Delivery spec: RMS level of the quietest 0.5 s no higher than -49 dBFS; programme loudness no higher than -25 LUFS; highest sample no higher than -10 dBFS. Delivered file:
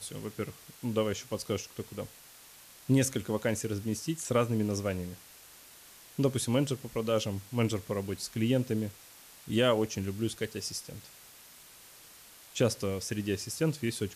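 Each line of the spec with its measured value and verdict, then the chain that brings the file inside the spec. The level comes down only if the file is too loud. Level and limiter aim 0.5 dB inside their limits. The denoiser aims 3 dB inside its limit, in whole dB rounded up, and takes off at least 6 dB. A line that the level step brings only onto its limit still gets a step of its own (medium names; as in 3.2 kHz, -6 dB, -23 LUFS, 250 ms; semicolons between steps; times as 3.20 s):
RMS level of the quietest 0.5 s -54 dBFS: pass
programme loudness -32.0 LUFS: pass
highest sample -15.5 dBFS: pass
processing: none needed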